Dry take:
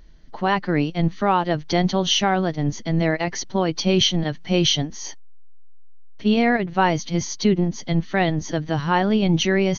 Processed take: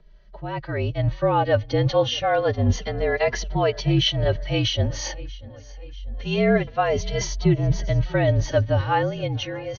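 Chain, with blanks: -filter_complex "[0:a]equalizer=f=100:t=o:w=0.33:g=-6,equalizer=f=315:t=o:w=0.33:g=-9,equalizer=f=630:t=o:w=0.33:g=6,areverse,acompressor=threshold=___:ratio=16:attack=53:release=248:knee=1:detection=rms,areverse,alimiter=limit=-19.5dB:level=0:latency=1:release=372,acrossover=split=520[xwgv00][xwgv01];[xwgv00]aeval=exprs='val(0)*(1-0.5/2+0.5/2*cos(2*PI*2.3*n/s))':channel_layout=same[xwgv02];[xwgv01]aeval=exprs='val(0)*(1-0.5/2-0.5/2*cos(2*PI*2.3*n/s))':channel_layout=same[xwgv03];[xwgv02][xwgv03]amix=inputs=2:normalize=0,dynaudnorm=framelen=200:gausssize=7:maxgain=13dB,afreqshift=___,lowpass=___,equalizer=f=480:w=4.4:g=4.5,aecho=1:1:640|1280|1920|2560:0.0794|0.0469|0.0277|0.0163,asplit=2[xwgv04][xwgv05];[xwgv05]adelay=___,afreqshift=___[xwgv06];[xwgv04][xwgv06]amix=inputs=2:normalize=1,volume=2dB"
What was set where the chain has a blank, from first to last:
-27dB, -46, 4k, 2.6, -0.27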